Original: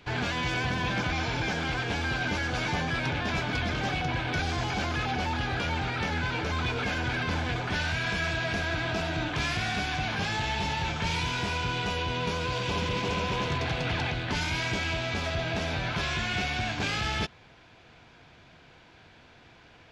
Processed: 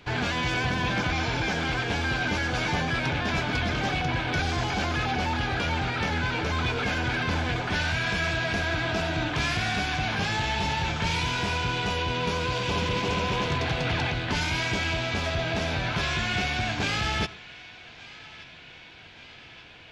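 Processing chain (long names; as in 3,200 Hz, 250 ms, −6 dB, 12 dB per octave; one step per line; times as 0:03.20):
feedback echo with a band-pass in the loop 1,180 ms, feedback 76%, band-pass 2,800 Hz, level −17.5 dB
on a send at −20 dB: convolution reverb RT60 0.30 s, pre-delay 67 ms
on the sum: level +2.5 dB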